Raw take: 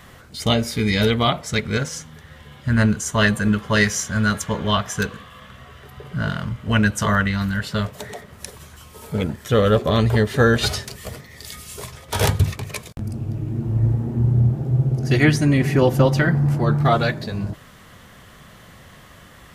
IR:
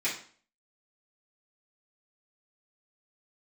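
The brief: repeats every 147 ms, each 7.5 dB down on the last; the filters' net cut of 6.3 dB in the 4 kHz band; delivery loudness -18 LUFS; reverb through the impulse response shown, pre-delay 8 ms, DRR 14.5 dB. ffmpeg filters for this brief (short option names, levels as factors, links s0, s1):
-filter_complex "[0:a]equalizer=f=4000:t=o:g=-8.5,aecho=1:1:147|294|441|588|735:0.422|0.177|0.0744|0.0312|0.0131,asplit=2[s0][s1];[1:a]atrim=start_sample=2205,adelay=8[s2];[s1][s2]afir=irnorm=-1:irlink=0,volume=0.0708[s3];[s0][s3]amix=inputs=2:normalize=0,volume=1.26"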